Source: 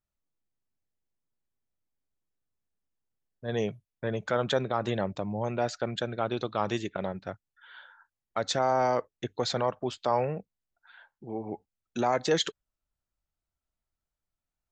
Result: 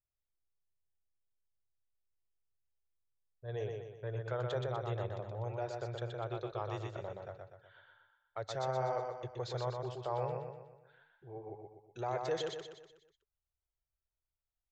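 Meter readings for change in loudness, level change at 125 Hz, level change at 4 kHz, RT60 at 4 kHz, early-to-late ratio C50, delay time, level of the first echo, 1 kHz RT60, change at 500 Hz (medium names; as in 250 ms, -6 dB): -9.0 dB, -3.5 dB, -14.0 dB, no reverb, no reverb, 123 ms, -4.0 dB, no reverb, -8.5 dB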